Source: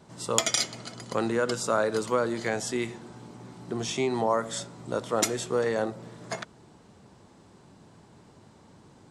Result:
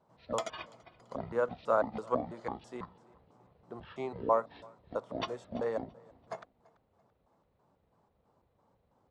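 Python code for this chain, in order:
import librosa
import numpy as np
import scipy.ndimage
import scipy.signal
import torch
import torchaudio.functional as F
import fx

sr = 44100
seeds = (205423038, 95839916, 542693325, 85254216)

p1 = fx.pitch_trill(x, sr, semitones=-12.0, every_ms=165)
p2 = fx.lowpass(p1, sr, hz=2700.0, slope=6)
p3 = fx.band_shelf(p2, sr, hz=780.0, db=8.5, octaves=1.7)
p4 = p3 + fx.echo_feedback(p3, sr, ms=336, feedback_pct=39, wet_db=-18.5, dry=0)
p5 = fx.upward_expand(p4, sr, threshold_db=-38.0, expansion=1.5)
y = p5 * 10.0 ** (-8.0 / 20.0)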